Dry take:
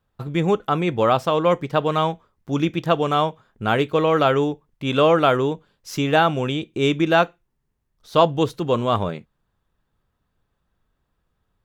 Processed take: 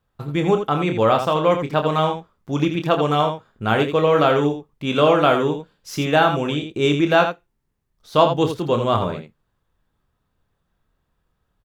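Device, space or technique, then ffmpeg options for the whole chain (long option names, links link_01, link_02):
slapback doubling: -filter_complex "[0:a]asplit=3[link_01][link_02][link_03];[link_02]adelay=27,volume=-7.5dB[link_04];[link_03]adelay=83,volume=-8dB[link_05];[link_01][link_04][link_05]amix=inputs=3:normalize=0"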